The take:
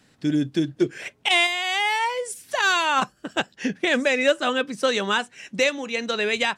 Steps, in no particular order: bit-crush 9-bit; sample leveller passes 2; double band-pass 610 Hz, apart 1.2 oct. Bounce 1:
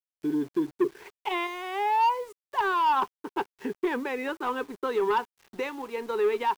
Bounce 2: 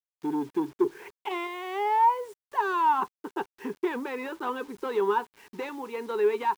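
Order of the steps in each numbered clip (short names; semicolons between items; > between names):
double band-pass > sample leveller > bit-crush; sample leveller > double band-pass > bit-crush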